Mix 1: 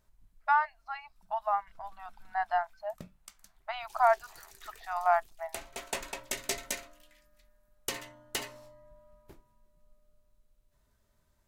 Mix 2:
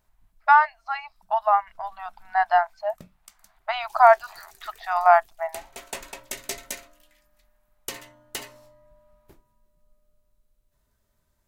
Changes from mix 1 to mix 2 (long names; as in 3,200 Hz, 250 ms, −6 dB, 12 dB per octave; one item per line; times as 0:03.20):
speech +10.0 dB
master: add high-shelf EQ 12,000 Hz +6.5 dB